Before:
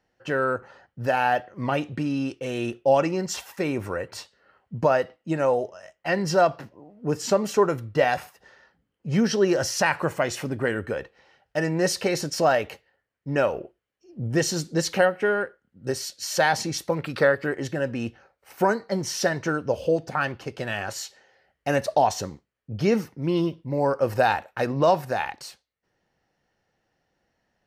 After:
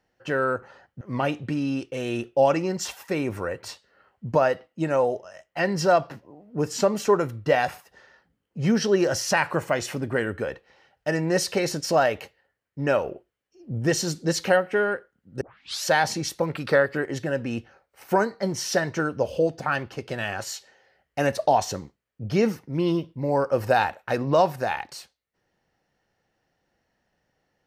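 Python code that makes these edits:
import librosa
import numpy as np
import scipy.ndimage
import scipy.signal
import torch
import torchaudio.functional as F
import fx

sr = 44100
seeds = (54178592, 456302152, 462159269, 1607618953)

y = fx.edit(x, sr, fx.cut(start_s=1.01, length_s=0.49),
    fx.tape_start(start_s=15.9, length_s=0.43), tone=tone)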